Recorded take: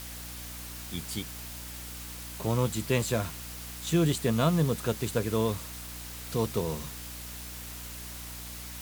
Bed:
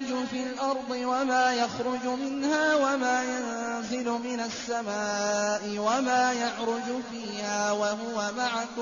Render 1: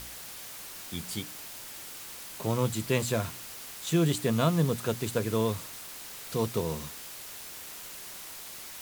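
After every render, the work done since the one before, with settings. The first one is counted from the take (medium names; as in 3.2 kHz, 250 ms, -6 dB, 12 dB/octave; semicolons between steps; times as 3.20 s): de-hum 60 Hz, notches 5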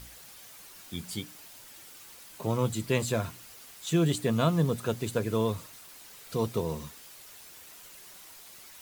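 noise reduction 8 dB, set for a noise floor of -44 dBFS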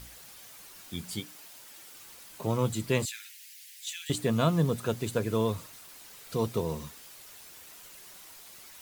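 1.20–1.94 s: bass shelf 140 Hz -11 dB; 3.05–4.10 s: steep high-pass 1.8 kHz 48 dB/octave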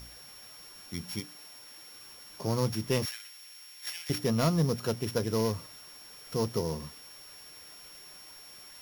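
sorted samples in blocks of 8 samples; saturation -16 dBFS, distortion -21 dB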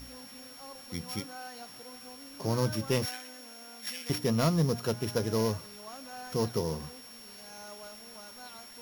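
add bed -21 dB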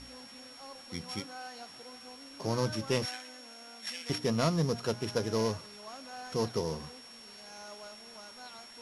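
low-pass 9.6 kHz 24 dB/octave; bass shelf 220 Hz -5 dB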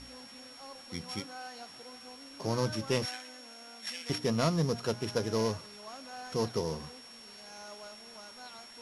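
no audible change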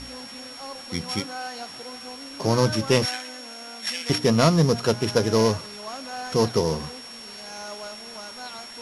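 trim +10.5 dB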